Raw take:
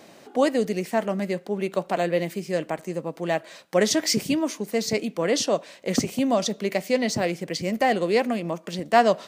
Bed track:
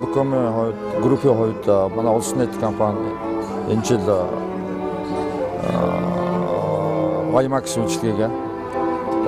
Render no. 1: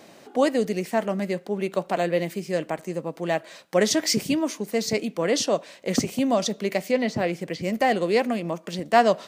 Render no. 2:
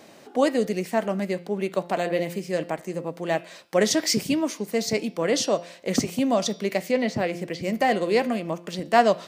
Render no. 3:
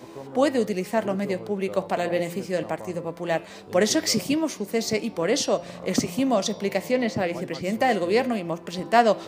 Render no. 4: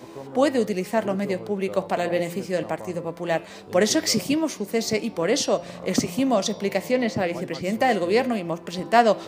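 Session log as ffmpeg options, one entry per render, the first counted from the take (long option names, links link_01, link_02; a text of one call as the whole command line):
ffmpeg -i in.wav -filter_complex "[0:a]asettb=1/sr,asplit=3[link_01][link_02][link_03];[link_01]atrim=end=6.914[link_04];[link_02]atrim=start=6.91:end=7.64,asetpts=PTS-STARTPTS,afade=type=in:duration=0.004:curve=qsin,afade=type=out:start_time=0.726:duration=0.004:curve=qsin,acrossover=split=3400[link_05][link_06];[link_06]acompressor=threshold=-44dB:ratio=4:attack=1:release=60[link_07];[link_05][link_07]amix=inputs=2:normalize=0[link_08];[link_03]atrim=start=7.636[link_09];[link_04][link_08]acrossfade=duration=0.004:curve1=hsin:curve2=qsin[link_10];[link_10][link_09]acrossfade=duration=0.004:curve1=qsin:curve2=hsin" out.wav
ffmpeg -i in.wav -af "bandreject=frequency=173.3:width_type=h:width=4,bandreject=frequency=346.6:width_type=h:width=4,bandreject=frequency=519.9:width_type=h:width=4,bandreject=frequency=693.2:width_type=h:width=4,bandreject=frequency=866.5:width_type=h:width=4,bandreject=frequency=1039.8:width_type=h:width=4,bandreject=frequency=1213.1:width_type=h:width=4,bandreject=frequency=1386.4:width_type=h:width=4,bandreject=frequency=1559.7:width_type=h:width=4,bandreject=frequency=1733:width_type=h:width=4,bandreject=frequency=1906.3:width_type=h:width=4,bandreject=frequency=2079.6:width_type=h:width=4,bandreject=frequency=2252.9:width_type=h:width=4,bandreject=frequency=2426.2:width_type=h:width=4,bandreject=frequency=2599.5:width_type=h:width=4,bandreject=frequency=2772.8:width_type=h:width=4,bandreject=frequency=2946.1:width_type=h:width=4,bandreject=frequency=3119.4:width_type=h:width=4,bandreject=frequency=3292.7:width_type=h:width=4,bandreject=frequency=3466:width_type=h:width=4,bandreject=frequency=3639.3:width_type=h:width=4,bandreject=frequency=3812.6:width_type=h:width=4,bandreject=frequency=3985.9:width_type=h:width=4,bandreject=frequency=4159.2:width_type=h:width=4,bandreject=frequency=4332.5:width_type=h:width=4,bandreject=frequency=4505.8:width_type=h:width=4,bandreject=frequency=4679.1:width_type=h:width=4,bandreject=frequency=4852.4:width_type=h:width=4,bandreject=frequency=5025.7:width_type=h:width=4,bandreject=frequency=5199:width_type=h:width=4,bandreject=frequency=5372.3:width_type=h:width=4,bandreject=frequency=5545.6:width_type=h:width=4,bandreject=frequency=5718.9:width_type=h:width=4" out.wav
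ffmpeg -i in.wav -i bed.wav -filter_complex "[1:a]volume=-21dB[link_01];[0:a][link_01]amix=inputs=2:normalize=0" out.wav
ffmpeg -i in.wav -af "volume=1dB" out.wav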